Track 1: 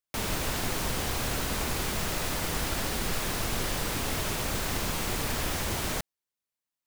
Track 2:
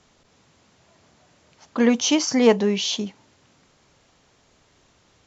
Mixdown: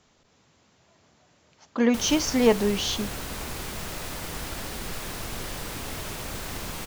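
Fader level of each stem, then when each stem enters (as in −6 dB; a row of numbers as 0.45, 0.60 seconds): −4.0, −3.5 decibels; 1.80, 0.00 seconds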